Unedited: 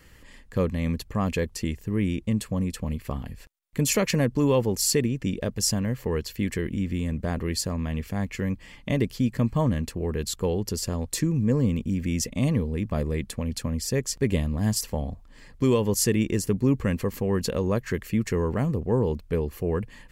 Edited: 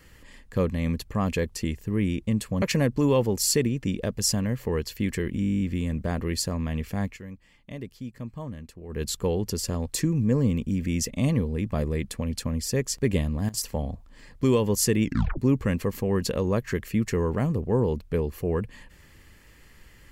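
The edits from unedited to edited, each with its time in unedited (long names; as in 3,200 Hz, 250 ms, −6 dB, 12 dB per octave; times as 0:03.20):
0:02.62–0:04.01: remove
0:06.80: stutter 0.02 s, 11 plays
0:08.24–0:10.21: duck −13 dB, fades 0.14 s
0:14.31–0:15.10: duck −19 dB, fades 0.37 s logarithmic
0:16.23: tape stop 0.34 s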